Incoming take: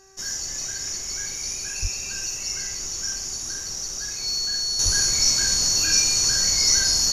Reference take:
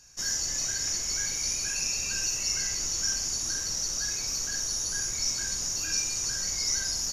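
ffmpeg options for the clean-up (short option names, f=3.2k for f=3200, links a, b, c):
-filter_complex "[0:a]bandreject=f=385.7:t=h:w=4,bandreject=f=771.4:t=h:w=4,bandreject=f=1.1571k:t=h:w=4,bandreject=f=1.5428k:t=h:w=4,bandreject=f=1.9285k:t=h:w=4,bandreject=f=4.4k:w=30,asplit=3[a][b][c];[a]afade=t=out:st=1.81:d=0.02[d];[b]highpass=f=140:w=0.5412,highpass=f=140:w=1.3066,afade=t=in:st=1.81:d=0.02,afade=t=out:st=1.93:d=0.02[e];[c]afade=t=in:st=1.93:d=0.02[f];[d][e][f]amix=inputs=3:normalize=0,asplit=3[g][h][i];[g]afade=t=out:st=4.84:d=0.02[j];[h]highpass=f=140:w=0.5412,highpass=f=140:w=1.3066,afade=t=in:st=4.84:d=0.02,afade=t=out:st=4.96:d=0.02[k];[i]afade=t=in:st=4.96:d=0.02[l];[j][k][l]amix=inputs=3:normalize=0,asetnsamples=n=441:p=0,asendcmd='4.79 volume volume -9dB',volume=0dB"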